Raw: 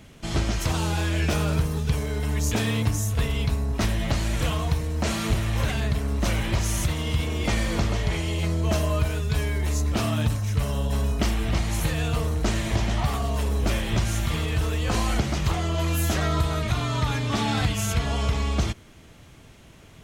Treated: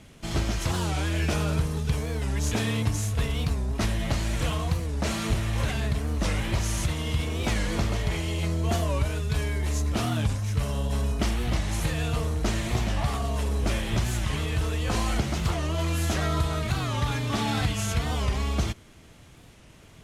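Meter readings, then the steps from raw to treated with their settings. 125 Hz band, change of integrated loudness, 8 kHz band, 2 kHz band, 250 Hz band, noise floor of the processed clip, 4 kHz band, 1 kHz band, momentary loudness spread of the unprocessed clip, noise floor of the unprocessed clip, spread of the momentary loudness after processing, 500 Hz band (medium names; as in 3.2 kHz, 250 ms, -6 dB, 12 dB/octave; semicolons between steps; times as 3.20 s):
-2.0 dB, -2.0 dB, -2.0 dB, -2.0 dB, -2.0 dB, -51 dBFS, -2.0 dB, -2.0 dB, 2 LU, -49 dBFS, 2 LU, -2.0 dB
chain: CVSD coder 64 kbps; warped record 45 rpm, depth 160 cents; trim -2 dB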